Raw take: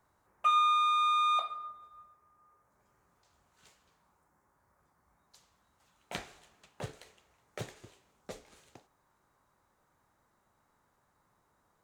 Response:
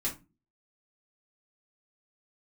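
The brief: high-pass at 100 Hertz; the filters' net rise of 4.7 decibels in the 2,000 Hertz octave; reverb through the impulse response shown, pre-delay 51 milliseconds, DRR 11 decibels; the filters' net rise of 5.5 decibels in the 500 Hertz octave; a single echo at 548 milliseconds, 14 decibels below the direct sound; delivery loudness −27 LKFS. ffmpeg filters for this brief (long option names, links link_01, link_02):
-filter_complex "[0:a]highpass=100,equalizer=frequency=500:width_type=o:gain=6.5,equalizer=frequency=2000:width_type=o:gain=6,aecho=1:1:548:0.2,asplit=2[link_01][link_02];[1:a]atrim=start_sample=2205,adelay=51[link_03];[link_02][link_03]afir=irnorm=-1:irlink=0,volume=-15dB[link_04];[link_01][link_04]amix=inputs=2:normalize=0,volume=1dB"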